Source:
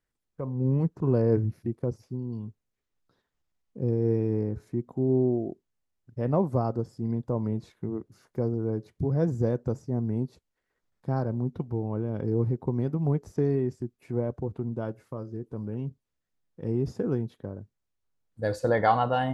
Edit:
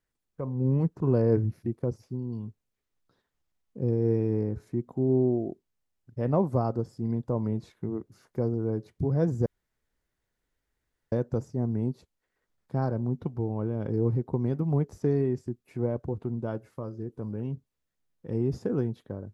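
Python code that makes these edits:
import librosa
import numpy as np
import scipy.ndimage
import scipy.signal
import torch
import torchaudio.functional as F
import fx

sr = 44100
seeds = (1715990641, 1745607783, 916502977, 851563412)

y = fx.edit(x, sr, fx.insert_room_tone(at_s=9.46, length_s=1.66), tone=tone)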